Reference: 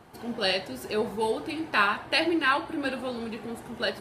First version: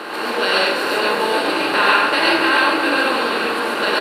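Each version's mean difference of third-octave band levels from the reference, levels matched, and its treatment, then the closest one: 9.0 dB: per-bin compression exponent 0.4; HPF 290 Hz 12 dB/oct; frequency-shifting echo 0.43 s, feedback 46%, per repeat -36 Hz, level -11 dB; non-linear reverb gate 0.16 s rising, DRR -4 dB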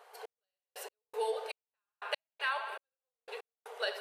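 21.5 dB: analogue delay 77 ms, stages 2048, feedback 63%, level -13 dB; compressor 6:1, threshold -26 dBFS, peak gain reduction 9 dB; brick-wall FIR high-pass 400 Hz; step gate "xx....x..x" 119 bpm -60 dB; gain -3 dB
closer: first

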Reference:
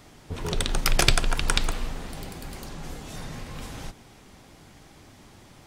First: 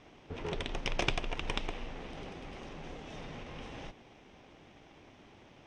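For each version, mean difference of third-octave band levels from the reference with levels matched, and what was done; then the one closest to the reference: 6.5 dB: minimum comb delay 0.35 ms; in parallel at -1 dB: compressor, threshold -31 dBFS, peak gain reduction 16 dB; on the sum: LPF 6900 Hz 24 dB/oct; tone controls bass -9 dB, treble -14 dB; gain -6.5 dB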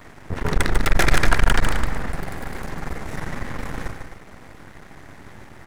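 4.0 dB: resonant high shelf 2400 Hz -7.5 dB, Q 3; half-wave rectifier; loudspeakers at several distances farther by 51 m -7 dB, 89 m -12 dB; maximiser +11 dB; gain -1 dB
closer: second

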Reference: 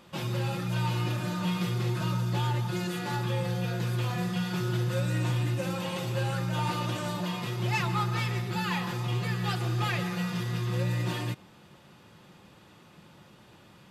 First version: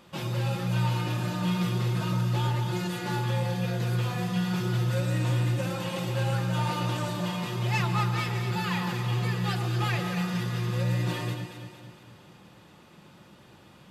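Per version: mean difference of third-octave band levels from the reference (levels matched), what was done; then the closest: 1.5 dB: echo with dull and thin repeats by turns 0.115 s, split 980 Hz, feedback 71%, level -5 dB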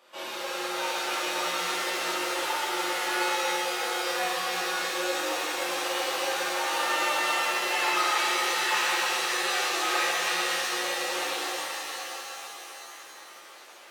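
14.0 dB: HPF 410 Hz 24 dB/oct; shimmer reverb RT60 3.5 s, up +7 st, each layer -2 dB, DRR -9.5 dB; gain -4.5 dB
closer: first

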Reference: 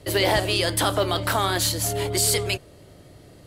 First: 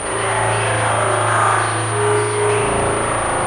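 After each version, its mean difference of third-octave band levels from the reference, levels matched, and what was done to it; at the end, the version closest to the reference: 12.0 dB: infinite clipping; bell 1100 Hz +13.5 dB 2.1 oct; spring tank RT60 1.5 s, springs 36 ms, chirp 65 ms, DRR -6.5 dB; pulse-width modulation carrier 9300 Hz; gain -7 dB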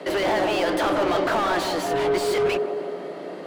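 8.5 dB: steep high-pass 160 Hz 72 dB/oct; high shelf 4300 Hz -12 dB; overdrive pedal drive 32 dB, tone 1500 Hz, clips at -10.5 dBFS; on a send: band-limited delay 0.161 s, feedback 59%, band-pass 490 Hz, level -3.5 dB; on the sum: gain -5 dB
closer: second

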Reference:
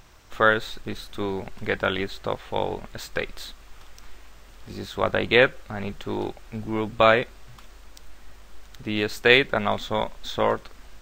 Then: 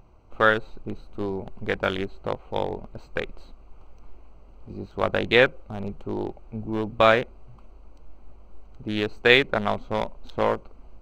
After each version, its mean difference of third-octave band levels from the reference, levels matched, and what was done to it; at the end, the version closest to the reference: 5.5 dB: Wiener smoothing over 25 samples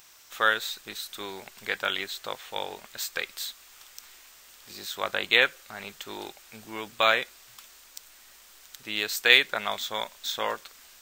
8.0 dB: tilt +4.5 dB/oct; gain -5.5 dB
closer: first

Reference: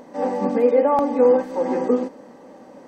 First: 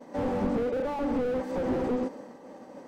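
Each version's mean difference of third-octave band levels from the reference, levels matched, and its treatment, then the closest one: 6.5 dB: compressor, threshold -20 dBFS, peak gain reduction 8.5 dB; expander -40 dBFS; slew limiter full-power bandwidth 21 Hz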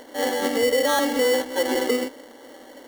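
10.5 dB: steep high-pass 250 Hz 48 dB/oct; limiter -13.5 dBFS, peak gain reduction 7 dB; sample-rate reducer 2500 Hz, jitter 0%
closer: first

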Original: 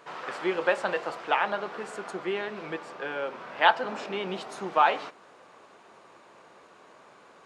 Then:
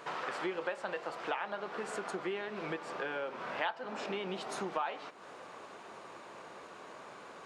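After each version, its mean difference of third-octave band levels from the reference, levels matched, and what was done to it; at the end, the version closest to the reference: 7.0 dB: compressor 4:1, threshold -40 dBFS, peak gain reduction 21.5 dB; gain +4 dB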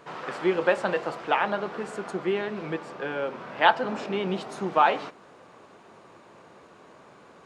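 2.5 dB: low shelf 300 Hz +11.5 dB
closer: second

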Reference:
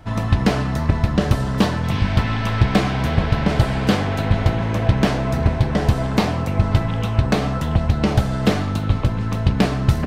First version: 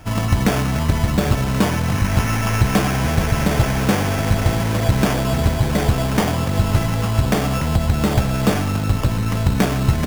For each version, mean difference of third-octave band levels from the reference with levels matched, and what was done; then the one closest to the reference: 5.0 dB: bell 1600 Hz +2.5 dB; in parallel at -1 dB: limiter -15 dBFS, peak gain reduction 11 dB; on the sum: sample-rate reducer 4000 Hz, jitter 0%; gain -3 dB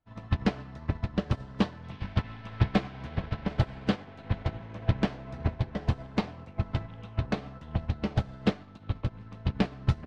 7.5 dB: LPF 4500 Hz 12 dB/oct; notches 50/100/150 Hz; upward expander 2.5:1, over -32 dBFS; gain -6 dB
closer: first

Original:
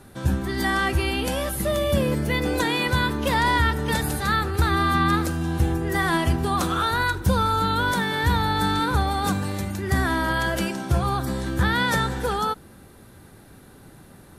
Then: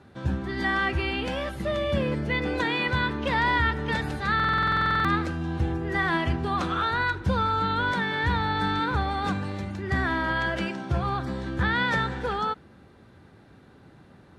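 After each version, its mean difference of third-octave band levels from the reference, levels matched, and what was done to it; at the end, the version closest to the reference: 4.5 dB: HPF 57 Hz; dynamic EQ 2100 Hz, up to +4 dB, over -36 dBFS, Q 1.2; LPF 3900 Hz 12 dB/oct; stuck buffer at 4.35, samples 2048, times 14; gain -4 dB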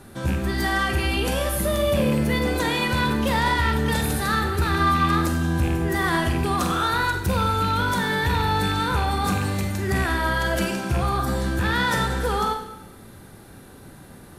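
2.5 dB: rattling part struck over -21 dBFS, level -22 dBFS; in parallel at +2 dB: limiter -17.5 dBFS, peak gain reduction 8.5 dB; on the sum: soft clip -10 dBFS, distortion -20 dB; Schroeder reverb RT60 0.82 s, combs from 32 ms, DRR 4.5 dB; gain -5 dB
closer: second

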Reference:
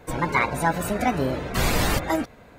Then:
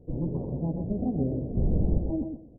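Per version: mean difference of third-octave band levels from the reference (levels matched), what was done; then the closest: 19.0 dB: Gaussian blur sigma 20 samples; on a send: feedback echo 0.125 s, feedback 20%, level -6.5 dB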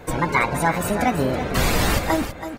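3.0 dB: in parallel at +2 dB: compressor, threshold -32 dBFS, peak gain reduction 15 dB; on the sum: echo 0.328 s -10.5 dB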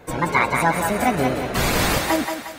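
4.0 dB: low shelf 62 Hz -8 dB; on a send: thinning echo 0.179 s, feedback 51%, high-pass 560 Hz, level -4 dB; on the sum: gain +3 dB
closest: second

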